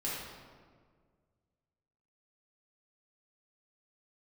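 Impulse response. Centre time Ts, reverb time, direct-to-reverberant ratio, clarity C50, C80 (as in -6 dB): 94 ms, 1.8 s, -8.0 dB, -1.0 dB, 1.5 dB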